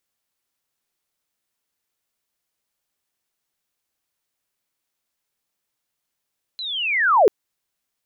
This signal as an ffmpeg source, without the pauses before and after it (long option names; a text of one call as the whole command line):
ffmpeg -f lavfi -i "aevalsrc='pow(10,(-27.5+18.5*t/0.69)/20)*sin(2*PI*(4100*t-3740*t*t/(2*0.69)))':duration=0.69:sample_rate=44100" out.wav